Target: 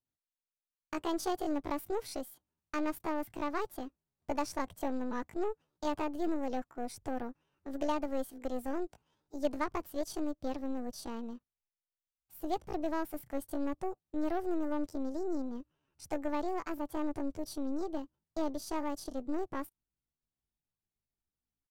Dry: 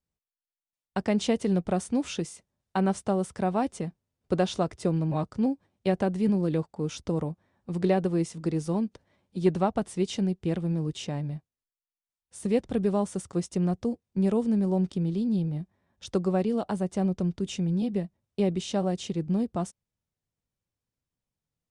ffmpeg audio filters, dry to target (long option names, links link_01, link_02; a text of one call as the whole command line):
ffmpeg -i in.wav -af "aeval=exprs='0.251*(cos(1*acos(clip(val(0)/0.251,-1,1)))-cos(1*PI/2))+0.0316*(cos(3*acos(clip(val(0)/0.251,-1,1)))-cos(3*PI/2))+0.0141*(cos(5*acos(clip(val(0)/0.251,-1,1)))-cos(5*PI/2))+0.00891*(cos(8*acos(clip(val(0)/0.251,-1,1)))-cos(8*PI/2))':channel_layout=same,asetrate=70004,aresample=44100,atempo=0.629961,asubboost=boost=3:cutoff=89,volume=-7dB" out.wav